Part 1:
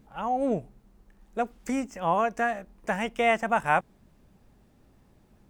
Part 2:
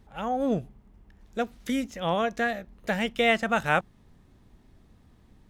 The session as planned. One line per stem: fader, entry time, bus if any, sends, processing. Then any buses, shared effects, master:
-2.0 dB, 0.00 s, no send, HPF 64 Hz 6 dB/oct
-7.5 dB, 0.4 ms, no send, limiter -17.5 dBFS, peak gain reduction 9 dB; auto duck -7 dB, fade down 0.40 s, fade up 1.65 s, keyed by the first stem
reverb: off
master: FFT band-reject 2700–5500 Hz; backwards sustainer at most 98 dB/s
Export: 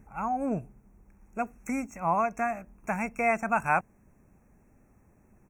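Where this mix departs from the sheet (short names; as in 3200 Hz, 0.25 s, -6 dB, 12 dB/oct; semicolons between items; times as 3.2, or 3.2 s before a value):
stem 2 -7.5 dB -> -0.5 dB; master: missing backwards sustainer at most 98 dB/s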